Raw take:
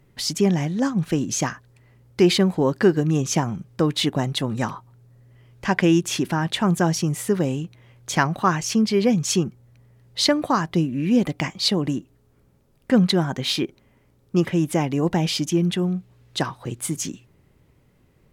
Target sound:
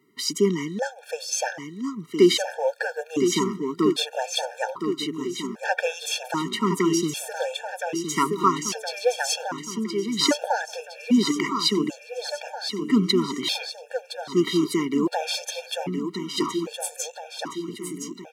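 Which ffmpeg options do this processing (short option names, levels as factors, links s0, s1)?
-filter_complex "[0:a]highpass=f=230:w=0.5412,highpass=f=230:w=1.3066,asplit=2[s0][s1];[s1]aecho=0:1:1016|2032|3048|4064|5080|6096|7112:0.447|0.259|0.15|0.0872|0.0505|0.0293|0.017[s2];[s0][s2]amix=inputs=2:normalize=0,afftfilt=real='re*gt(sin(2*PI*0.63*pts/sr)*(1-2*mod(floor(b*sr/1024/460),2)),0)':imag='im*gt(sin(2*PI*0.63*pts/sr)*(1-2*mod(floor(b*sr/1024/460),2)),0)':win_size=1024:overlap=0.75,volume=1.19"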